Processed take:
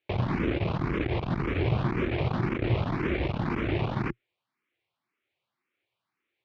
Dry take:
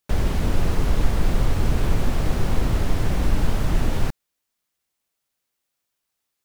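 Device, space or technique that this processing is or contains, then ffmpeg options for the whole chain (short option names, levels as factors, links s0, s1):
barber-pole phaser into a guitar amplifier: -filter_complex "[0:a]asplit=2[s0][s1];[s1]afreqshift=1.9[s2];[s0][s2]amix=inputs=2:normalize=1,asoftclip=type=tanh:threshold=0.106,highpass=100,equalizer=f=120:t=q:w=4:g=6,equalizer=f=350:t=q:w=4:g=8,equalizer=f=1100:t=q:w=4:g=3,equalizer=f=2300:t=q:w=4:g=7,lowpass=f=3500:w=0.5412,lowpass=f=3500:w=1.3066,volume=1.41"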